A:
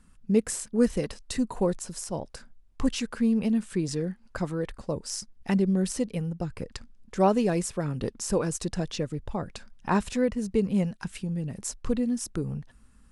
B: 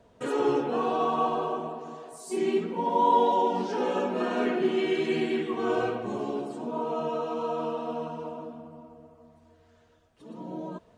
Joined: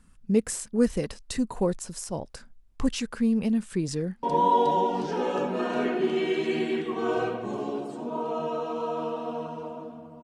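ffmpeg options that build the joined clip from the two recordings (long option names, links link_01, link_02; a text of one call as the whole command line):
ffmpeg -i cue0.wav -i cue1.wav -filter_complex "[0:a]apad=whole_dur=10.23,atrim=end=10.23,atrim=end=4.232[link_01];[1:a]atrim=start=2.838:end=8.84[link_02];[link_01][link_02]acrossfade=duration=0.004:curve1=hsin:curve2=hsin,asplit=2[link_03][link_04];[link_04]afade=type=in:start_time=3.93:duration=0.01,afade=type=out:start_time=4.23:duration=0.01,aecho=0:1:360|720|1080|1440|1800|2160|2520|2880|3240|3600|3960|4320:0.530884|0.424708|0.339766|0.271813|0.21745|0.17396|0.139168|0.111335|0.0890676|0.0712541|0.0570033|0.0456026[link_05];[link_03][link_05]amix=inputs=2:normalize=0" out.wav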